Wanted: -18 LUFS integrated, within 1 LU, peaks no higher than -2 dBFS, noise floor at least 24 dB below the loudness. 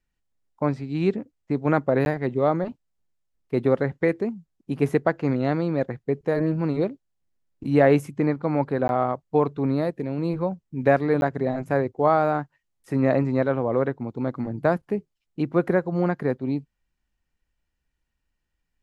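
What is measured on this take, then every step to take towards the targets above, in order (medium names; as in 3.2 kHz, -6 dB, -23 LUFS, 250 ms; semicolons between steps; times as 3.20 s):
dropouts 3; longest dropout 11 ms; loudness -24.5 LUFS; peak level -5.5 dBFS; loudness target -18.0 LUFS
-> interpolate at 2.05/8.88/11.21 s, 11 ms; trim +6.5 dB; peak limiter -2 dBFS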